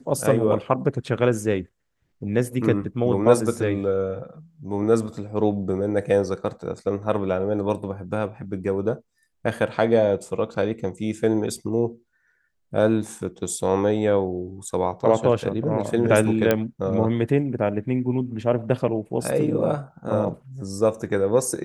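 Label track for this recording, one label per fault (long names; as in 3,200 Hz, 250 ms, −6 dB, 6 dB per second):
16.510000	16.510000	click −6 dBFS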